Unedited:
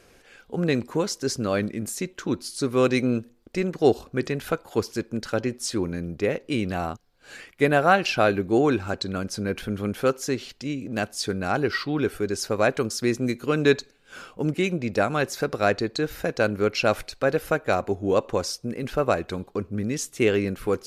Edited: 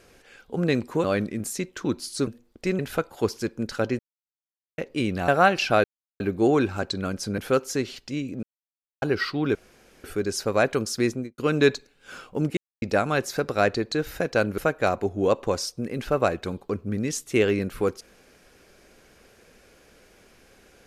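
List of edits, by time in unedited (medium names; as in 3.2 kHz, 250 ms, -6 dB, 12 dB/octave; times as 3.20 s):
1.04–1.46 s: delete
2.69–3.18 s: delete
3.70–4.33 s: delete
5.53–6.32 s: mute
6.82–7.75 s: delete
8.31 s: insert silence 0.36 s
9.49–9.91 s: delete
10.96–11.55 s: mute
12.08 s: insert room tone 0.49 s
13.09–13.42 s: studio fade out
14.61–14.86 s: mute
16.62–17.44 s: delete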